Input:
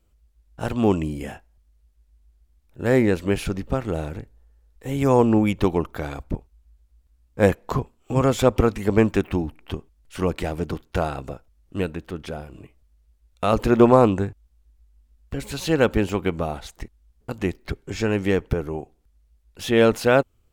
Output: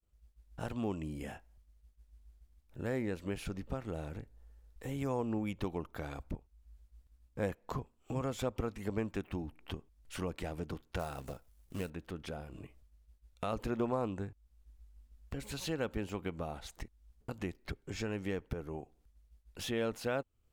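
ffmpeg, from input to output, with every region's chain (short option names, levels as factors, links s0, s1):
-filter_complex "[0:a]asettb=1/sr,asplit=3[s0][s1][s2];[s0]atrim=end=10.994[s3];[s1]atrim=start=10.99:end=11.9,asetpts=PTS-STARTPTS,afade=t=in:d=0.004:c=qsin,afade=t=out:st=0.906:d=0.004:c=qsin,equalizer=f=12000:w=0.65:g=10,acrusher=bits=4:mode=log:mix=0:aa=0.000001,bandreject=f=310:w=9.8[s4];[s2]atrim=start=11.896[s5];[s3][s4]acrossfade=d=0.004:c1=hsin:c2=qsin[s6];[s6][s5]acrossfade=d=0.004:c1=qsin:c2=hsin,agate=range=0.0224:threshold=0.00178:ratio=3:detection=peak,equalizer=f=380:t=o:w=0.35:g=-2,acompressor=threshold=0.00562:ratio=2,volume=0.891"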